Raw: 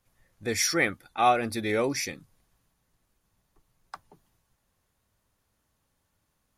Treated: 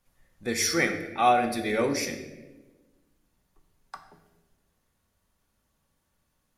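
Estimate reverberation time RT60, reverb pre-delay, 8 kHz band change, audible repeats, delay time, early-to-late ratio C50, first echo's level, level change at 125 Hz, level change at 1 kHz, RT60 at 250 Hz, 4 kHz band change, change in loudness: 1.2 s, 3 ms, 0.0 dB, no echo audible, no echo audible, 8.5 dB, no echo audible, −0.5 dB, +1.5 dB, 1.6 s, 0.0 dB, +1.0 dB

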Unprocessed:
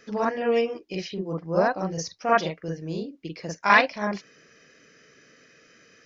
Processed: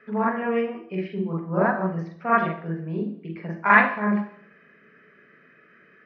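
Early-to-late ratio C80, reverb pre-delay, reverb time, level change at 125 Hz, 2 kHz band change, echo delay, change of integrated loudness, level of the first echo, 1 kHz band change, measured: 13.0 dB, 3 ms, 0.60 s, +4.5 dB, +2.5 dB, no echo audible, +1.5 dB, no echo audible, +1.5 dB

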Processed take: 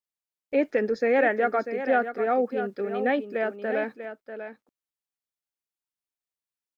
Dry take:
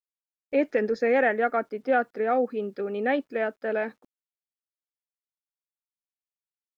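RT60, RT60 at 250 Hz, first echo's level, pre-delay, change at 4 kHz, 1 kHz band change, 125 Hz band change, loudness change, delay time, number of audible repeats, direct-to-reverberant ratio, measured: no reverb audible, no reverb audible, −10.0 dB, no reverb audible, +0.5 dB, +0.5 dB, can't be measured, +0.5 dB, 643 ms, 1, no reverb audible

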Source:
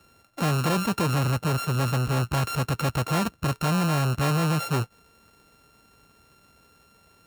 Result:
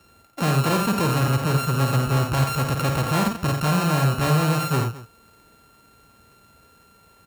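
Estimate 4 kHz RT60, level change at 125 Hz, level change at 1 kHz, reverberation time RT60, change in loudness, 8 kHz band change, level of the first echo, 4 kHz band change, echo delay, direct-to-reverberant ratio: no reverb audible, +3.5 dB, +4.0 dB, no reverb audible, +3.5 dB, +3.5 dB, −6.0 dB, +3.0 dB, 52 ms, no reverb audible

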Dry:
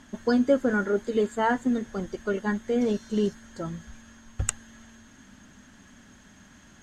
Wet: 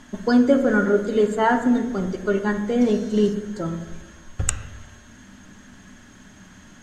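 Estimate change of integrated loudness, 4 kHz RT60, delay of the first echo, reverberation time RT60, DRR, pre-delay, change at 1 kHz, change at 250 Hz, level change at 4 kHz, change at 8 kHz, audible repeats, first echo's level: +6.0 dB, 0.80 s, no echo audible, 1.2 s, 6.0 dB, 3 ms, +5.5 dB, +6.5 dB, +5.0 dB, +4.5 dB, no echo audible, no echo audible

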